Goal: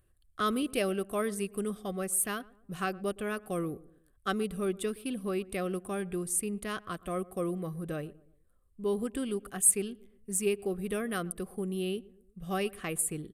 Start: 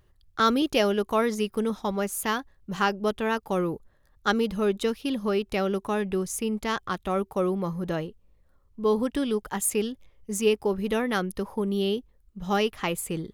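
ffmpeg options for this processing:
ffmpeg -i in.wav -filter_complex "[0:a]asuperstop=centerf=960:order=4:qfactor=3.5,highshelf=frequency=7700:width_type=q:width=3:gain=7,asplit=2[link_01][link_02];[link_02]adelay=118,lowpass=frequency=1200:poles=1,volume=-20dB,asplit=2[link_03][link_04];[link_04]adelay=118,lowpass=frequency=1200:poles=1,volume=0.44,asplit=2[link_05][link_06];[link_06]adelay=118,lowpass=frequency=1200:poles=1,volume=0.44[link_07];[link_01][link_03][link_05][link_07]amix=inputs=4:normalize=0,asetrate=41625,aresample=44100,atempo=1.05946,aresample=32000,aresample=44100,volume=-7dB" out.wav

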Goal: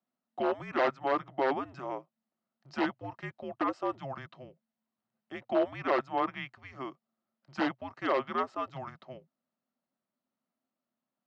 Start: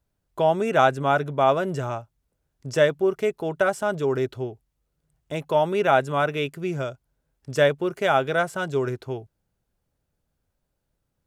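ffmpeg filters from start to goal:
ffmpeg -i in.wav -af "afreqshift=-270,aeval=exprs='0.211*(abs(mod(val(0)/0.211+3,4)-2)-1)':channel_layout=same,highpass=450,equalizer=frequency=450:width_type=q:width=4:gain=-7,equalizer=frequency=650:width_type=q:width=4:gain=5,equalizer=frequency=1100:width_type=q:width=4:gain=-3,equalizer=frequency=1600:width_type=q:width=4:gain=-3,equalizer=frequency=2400:width_type=q:width=4:gain=-8,equalizer=frequency=3400:width_type=q:width=4:gain=-8,lowpass=frequency=3800:width=0.5412,lowpass=frequency=3800:width=1.3066,volume=-2.5dB" out.wav

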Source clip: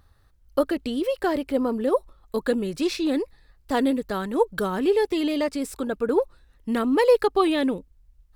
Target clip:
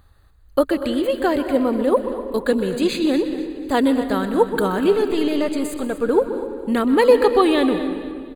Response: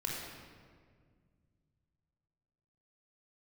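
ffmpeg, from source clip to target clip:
-filter_complex "[0:a]asettb=1/sr,asplit=3[link_01][link_02][link_03];[link_01]atrim=end=4.924[link_04];[link_02]atrim=start=4.92:end=6,asetpts=PTS-STARTPTS,afade=type=in:duration=0.004:curve=qsin,afade=type=out:start_time=1.076:duration=0.004:curve=qsin,aeval=exprs='(tanh(10*val(0)+0.25)-tanh(0.25))/10':channel_layout=same[link_05];[link_03]atrim=start=5.996[link_06];[link_04][link_05]acrossfade=duration=0.004:curve1=hsin:curve2=qsin[link_07];[link_07][link_06]acrossfade=duration=0.004:curve1=qsin:curve2=hsin,asuperstop=centerf=5500:order=8:qfactor=4.3,aecho=1:1:242|484|726|968:0.2|0.0758|0.0288|0.0109,asplit=2[link_08][link_09];[1:a]atrim=start_sample=2205,adelay=126[link_10];[link_09][link_10]afir=irnorm=-1:irlink=0,volume=-12.5dB[link_11];[link_08][link_11]amix=inputs=2:normalize=0,volume=4.5dB"

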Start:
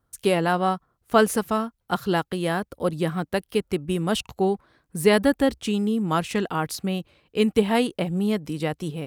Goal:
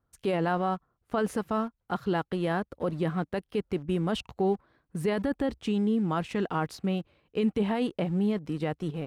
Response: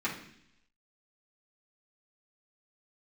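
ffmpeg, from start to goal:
-filter_complex "[0:a]asplit=2[link_01][link_02];[link_02]aeval=exprs='val(0)*gte(abs(val(0)),0.0266)':channel_layout=same,volume=-10dB[link_03];[link_01][link_03]amix=inputs=2:normalize=0,alimiter=limit=-13.5dB:level=0:latency=1:release=11,aemphasis=mode=reproduction:type=75kf,volume=-4.5dB"

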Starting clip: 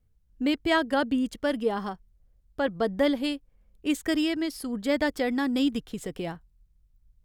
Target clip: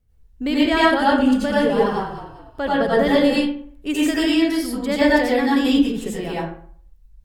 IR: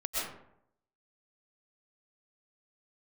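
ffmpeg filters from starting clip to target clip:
-filter_complex "[0:a]asettb=1/sr,asplit=3[link_01][link_02][link_03];[link_01]atrim=end=0.994[link_04];[link_02]atrim=start=0.99:end=3.3,asetpts=PTS-STARTPTS,afade=type=in:duration=0.004:curve=qsin,afade=type=out:start_time=2.306:duration=0.004:curve=qsin,asplit=5[link_05][link_06][link_07][link_08][link_09];[link_06]adelay=199,afreqshift=-45,volume=-10.5dB[link_10];[link_07]adelay=398,afreqshift=-90,volume=-19.4dB[link_11];[link_08]adelay=597,afreqshift=-135,volume=-28.2dB[link_12];[link_09]adelay=796,afreqshift=-180,volume=-37.1dB[link_13];[link_05][link_10][link_11][link_12][link_13]amix=inputs=5:normalize=0,atrim=end_sample=101871[link_14];[link_03]atrim=start=3.296[link_15];[link_04][link_14]acrossfade=duration=0.004:curve1=hsin:curve2=qsin[link_16];[link_16][link_15]acrossfade=duration=0.004:curve1=qsin:curve2=hsin[link_17];[1:a]atrim=start_sample=2205,asetrate=61740,aresample=44100[link_18];[link_17][link_18]afir=irnorm=-1:irlink=0,volume=6.5dB"

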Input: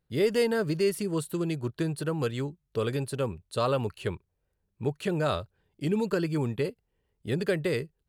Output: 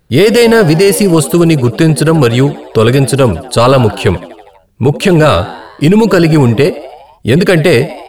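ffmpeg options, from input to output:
ffmpeg -i in.wav -filter_complex "[0:a]asplit=7[link_01][link_02][link_03][link_04][link_05][link_06][link_07];[link_02]adelay=81,afreqshift=80,volume=-19.5dB[link_08];[link_03]adelay=162,afreqshift=160,volume=-23.2dB[link_09];[link_04]adelay=243,afreqshift=240,volume=-27dB[link_10];[link_05]adelay=324,afreqshift=320,volume=-30.7dB[link_11];[link_06]adelay=405,afreqshift=400,volume=-34.5dB[link_12];[link_07]adelay=486,afreqshift=480,volume=-38.2dB[link_13];[link_01][link_08][link_09][link_10][link_11][link_12][link_13]amix=inputs=7:normalize=0,apsyclip=25dB,volume=-1.5dB" out.wav

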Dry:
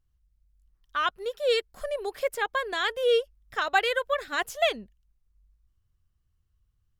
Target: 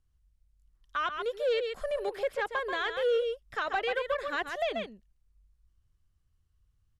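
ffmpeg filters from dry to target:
ffmpeg -i in.wav -filter_complex "[0:a]lowpass=frequency=12000:width=0.5412,lowpass=frequency=12000:width=1.3066,asplit=2[link_01][link_02];[link_02]adelay=134.1,volume=-9dB,highshelf=frequency=4000:gain=-3.02[link_03];[link_01][link_03]amix=inputs=2:normalize=0,acrossover=split=450[link_04][link_05];[link_05]acompressor=threshold=-26dB:ratio=4[link_06];[link_04][link_06]amix=inputs=2:normalize=0,asoftclip=type=tanh:threshold=-21.5dB,acrossover=split=3900[link_07][link_08];[link_08]acompressor=threshold=-57dB:ratio=4:attack=1:release=60[link_09];[link_07][link_09]amix=inputs=2:normalize=0" out.wav

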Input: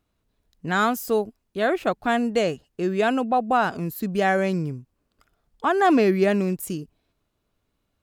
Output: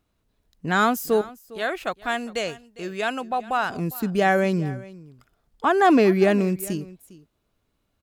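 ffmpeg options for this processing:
ffmpeg -i in.wav -filter_complex "[0:a]asettb=1/sr,asplit=3[link_01][link_02][link_03];[link_01]atrim=end=1.214[link_04];[link_02]atrim=start=1.21:end=3.7,asetpts=PTS-STARTPTS,afade=type=in:duration=0.004:curve=qsin,afade=type=out:start_time=2.486:duration=0.004:curve=qsin,equalizer=frequency=240:width=0.35:gain=-11[link_05];[link_03]atrim=start=3.696[link_06];[link_04][link_05]acrossfade=duration=0.004:curve1=hsin:curve2=qsin[link_07];[link_07][link_06]acrossfade=duration=0.004:curve1=qsin:curve2=hsin,aecho=1:1:405:0.106,volume=1.5dB" out.wav

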